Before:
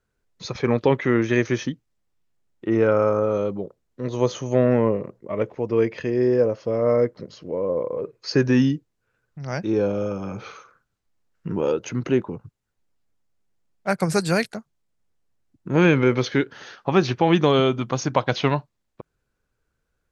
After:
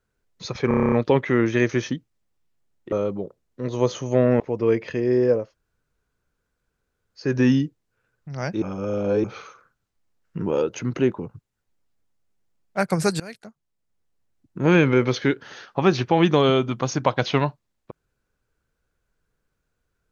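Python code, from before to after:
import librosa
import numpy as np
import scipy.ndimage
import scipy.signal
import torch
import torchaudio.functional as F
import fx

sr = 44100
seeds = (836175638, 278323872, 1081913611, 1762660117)

y = fx.edit(x, sr, fx.stutter(start_s=0.68, slice_s=0.03, count=9),
    fx.cut(start_s=2.68, length_s=0.64),
    fx.cut(start_s=4.8, length_s=0.7),
    fx.room_tone_fill(start_s=6.53, length_s=1.84, crossfade_s=0.24),
    fx.reverse_span(start_s=9.72, length_s=0.62),
    fx.fade_in_from(start_s=14.3, length_s=1.4, curve='qsin', floor_db=-24.0), tone=tone)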